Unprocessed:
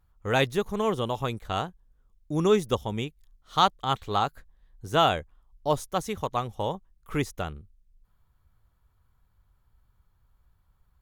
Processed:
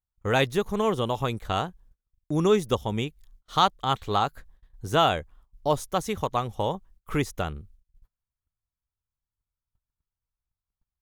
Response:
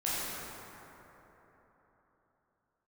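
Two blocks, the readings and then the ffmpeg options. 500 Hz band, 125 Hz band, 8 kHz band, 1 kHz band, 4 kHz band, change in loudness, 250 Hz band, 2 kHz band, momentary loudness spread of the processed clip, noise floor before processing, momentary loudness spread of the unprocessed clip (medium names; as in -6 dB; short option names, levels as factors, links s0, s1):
+1.0 dB, +2.0 dB, +1.5 dB, +1.0 dB, +1.0 dB, +1.0 dB, +1.5 dB, +1.0 dB, 10 LU, -68 dBFS, 11 LU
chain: -filter_complex "[0:a]agate=range=0.0316:threshold=0.00158:ratio=16:detection=peak,asplit=2[s0][s1];[s1]acompressor=threshold=0.0316:ratio=6,volume=1[s2];[s0][s2]amix=inputs=2:normalize=0,volume=0.841"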